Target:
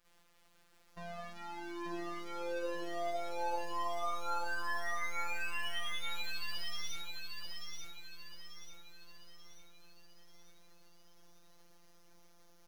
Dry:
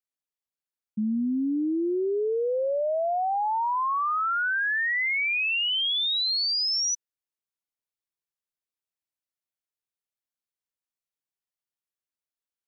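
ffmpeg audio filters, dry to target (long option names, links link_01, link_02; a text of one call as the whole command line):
ffmpeg -i in.wav -filter_complex "[0:a]aeval=exprs='val(0)+0.5*0.00562*sgn(val(0))':channel_layout=same,aeval=exprs='(tanh(282*val(0)+0.65)-tanh(0.65))/282':channel_layout=same,agate=range=-23dB:threshold=-54dB:ratio=16:detection=peak,lowpass=frequency=1800:poles=1,acrossover=split=460|740[link_01][link_02][link_03];[link_01]alimiter=level_in=34.5dB:limit=-24dB:level=0:latency=1,volume=-34.5dB[link_04];[link_04][link_02][link_03]amix=inputs=3:normalize=0,bandreject=frequency=173.3:width_type=h:width=4,bandreject=frequency=346.6:width_type=h:width=4,bandreject=frequency=519.9:width_type=h:width=4,bandreject=frequency=693.2:width_type=h:width=4,bandreject=frequency=866.5:width_type=h:width=4,bandreject=frequency=1039.8:width_type=h:width=4,bandreject=frequency=1213.1:width_type=h:width=4,bandreject=frequency=1386.4:width_type=h:width=4,bandreject=frequency=1559.7:width_type=h:width=4,bandreject=frequency=1733:width_type=h:width=4,bandreject=frequency=1906.3:width_type=h:width=4,bandreject=frequency=2079.6:width_type=h:width=4,bandreject=frequency=2252.9:width_type=h:width=4,bandreject=frequency=2426.2:width_type=h:width=4,bandreject=frequency=2599.5:width_type=h:width=4,bandreject=frequency=2772.8:width_type=h:width=4,bandreject=frequency=2946.1:width_type=h:width=4,asplit=3[link_05][link_06][link_07];[link_06]asetrate=33038,aresample=44100,atempo=1.33484,volume=-16dB[link_08];[link_07]asetrate=37084,aresample=44100,atempo=1.18921,volume=-16dB[link_09];[link_05][link_08][link_09]amix=inputs=3:normalize=0,afftfilt=real='hypot(re,im)*cos(PI*b)':imag='0':win_size=1024:overlap=0.75,asplit=2[link_10][link_11];[link_11]aecho=0:1:888|1776|2664|3552|4440|5328:0.668|0.314|0.148|0.0694|0.0326|0.0153[link_12];[link_10][link_12]amix=inputs=2:normalize=0,volume=15.5dB" out.wav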